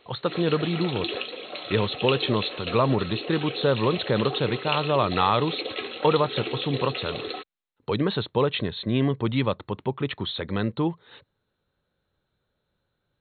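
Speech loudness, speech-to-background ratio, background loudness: -26.0 LUFS, 6.5 dB, -32.5 LUFS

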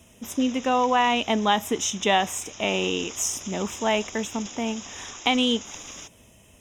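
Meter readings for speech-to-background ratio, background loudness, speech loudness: 14.5 dB, -39.0 LUFS, -24.5 LUFS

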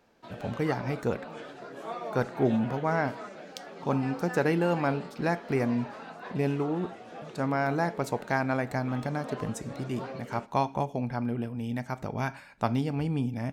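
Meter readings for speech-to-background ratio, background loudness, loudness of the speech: 12.0 dB, -42.5 LUFS, -30.5 LUFS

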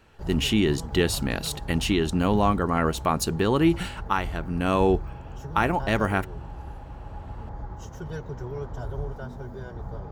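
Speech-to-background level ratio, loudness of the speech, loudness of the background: 12.0 dB, -25.0 LUFS, -37.0 LUFS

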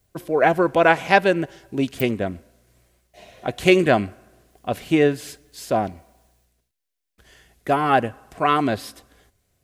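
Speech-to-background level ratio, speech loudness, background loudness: 18.5 dB, -20.5 LUFS, -39.0 LUFS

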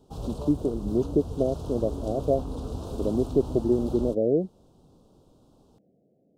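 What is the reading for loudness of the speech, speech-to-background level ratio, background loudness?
-27.0 LUFS, 9.0 dB, -36.0 LUFS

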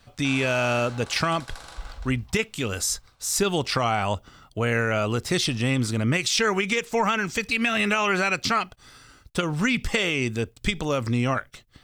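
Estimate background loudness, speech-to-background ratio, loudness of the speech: -42.0 LUFS, 17.5 dB, -24.5 LUFS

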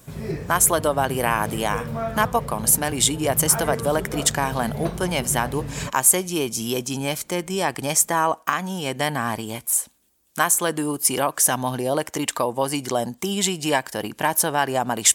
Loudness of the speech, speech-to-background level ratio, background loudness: -22.0 LUFS, 10.0 dB, -32.0 LUFS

